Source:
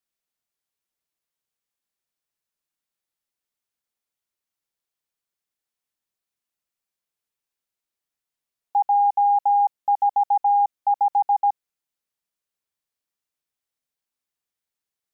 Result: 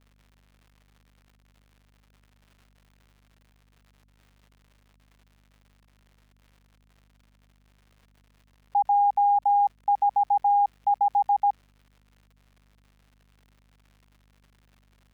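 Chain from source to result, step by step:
surface crackle 170 per second −42 dBFS
bass and treble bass +3 dB, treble −9 dB
mains hum 50 Hz, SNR 33 dB
level −2.5 dB

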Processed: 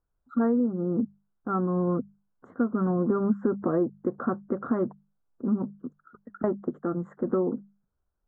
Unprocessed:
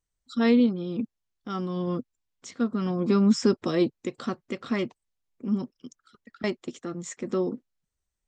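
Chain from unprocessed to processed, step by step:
elliptic low-pass filter 1,500 Hz, stop band 40 dB
mains-hum notches 50/100/150/200 Hz
downward compressor 6 to 1, threshold −28 dBFS, peak gain reduction 12.5 dB
level +6.5 dB

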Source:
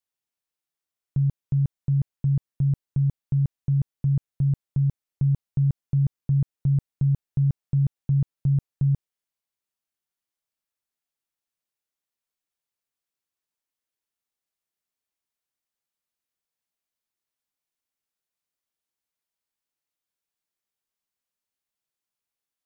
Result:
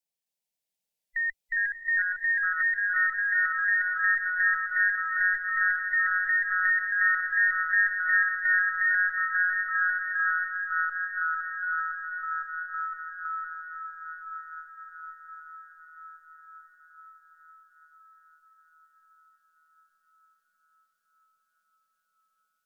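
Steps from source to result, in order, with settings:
frequency inversion band by band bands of 2,000 Hz
phaser with its sweep stopped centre 350 Hz, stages 6
feedback delay with all-pass diffusion 666 ms, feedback 61%, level −5 dB
delay with pitch and tempo change per echo 263 ms, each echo −2 semitones, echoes 3

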